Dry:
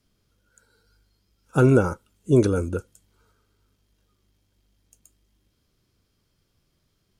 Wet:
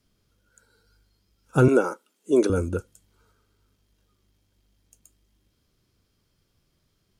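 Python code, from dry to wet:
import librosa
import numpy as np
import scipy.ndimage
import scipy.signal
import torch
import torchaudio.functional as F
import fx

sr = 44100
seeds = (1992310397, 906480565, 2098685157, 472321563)

y = fx.highpass(x, sr, hz=270.0, slope=24, at=(1.68, 2.5))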